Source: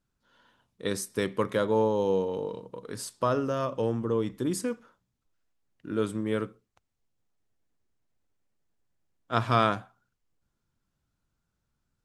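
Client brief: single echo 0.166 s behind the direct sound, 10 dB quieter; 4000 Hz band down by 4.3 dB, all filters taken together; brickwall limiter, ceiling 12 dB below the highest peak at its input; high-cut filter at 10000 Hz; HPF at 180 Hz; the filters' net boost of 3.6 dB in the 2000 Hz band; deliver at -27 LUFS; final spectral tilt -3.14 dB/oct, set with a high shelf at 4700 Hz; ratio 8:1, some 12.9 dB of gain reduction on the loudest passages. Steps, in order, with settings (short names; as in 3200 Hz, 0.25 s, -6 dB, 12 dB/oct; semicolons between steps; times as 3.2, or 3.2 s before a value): HPF 180 Hz; LPF 10000 Hz; bell 2000 Hz +7 dB; bell 4000 Hz -4.5 dB; high shelf 4700 Hz -7.5 dB; compressor 8:1, threshold -30 dBFS; limiter -28 dBFS; echo 0.166 s -10 dB; gain +11.5 dB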